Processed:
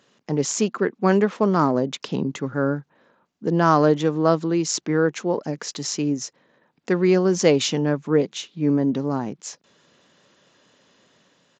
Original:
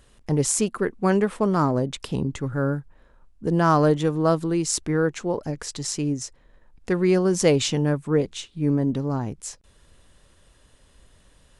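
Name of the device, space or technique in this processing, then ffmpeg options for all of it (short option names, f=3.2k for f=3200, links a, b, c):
Bluetooth headset: -af "highpass=f=160:w=0.5412,highpass=f=160:w=1.3066,dynaudnorm=f=110:g=9:m=3dB,aresample=16000,aresample=44100" -ar 16000 -c:a sbc -b:a 64k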